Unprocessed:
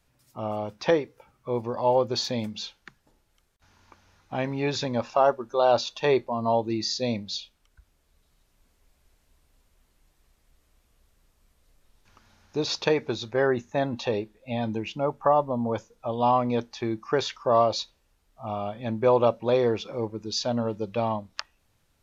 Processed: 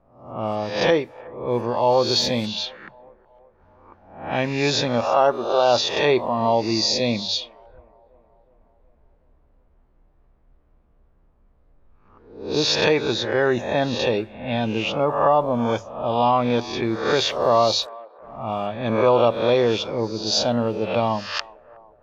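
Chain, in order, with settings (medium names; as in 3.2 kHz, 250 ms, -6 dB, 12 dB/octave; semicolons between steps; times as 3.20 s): reverse spectral sustain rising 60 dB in 0.63 s; in parallel at 0 dB: peak limiter -15.5 dBFS, peak gain reduction 8 dB; on the sum: hum notches 50/100 Hz; 17.17–18.67 s: small samples zeroed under -43 dBFS; dynamic bell 3.1 kHz, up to +4 dB, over -39 dBFS, Q 1.6; on a send: feedback echo behind a band-pass 368 ms, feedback 57%, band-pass 940 Hz, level -20.5 dB; on the sum: level-controlled noise filter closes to 960 Hz, open at -16.5 dBFS; trim -1.5 dB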